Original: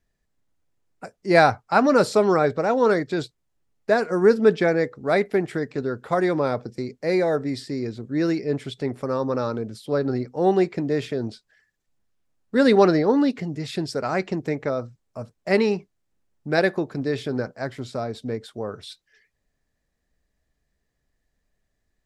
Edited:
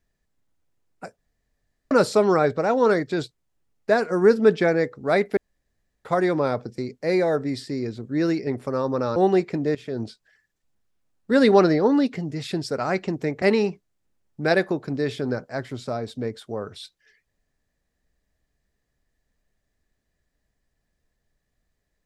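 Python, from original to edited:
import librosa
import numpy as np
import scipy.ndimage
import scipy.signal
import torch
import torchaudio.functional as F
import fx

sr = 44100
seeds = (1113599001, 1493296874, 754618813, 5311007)

y = fx.edit(x, sr, fx.room_tone_fill(start_s=1.18, length_s=0.73),
    fx.room_tone_fill(start_s=5.37, length_s=0.68),
    fx.cut(start_s=8.47, length_s=0.36),
    fx.cut(start_s=9.52, length_s=0.88),
    fx.fade_in_from(start_s=10.99, length_s=0.27, floor_db=-16.0),
    fx.cut(start_s=14.66, length_s=0.83), tone=tone)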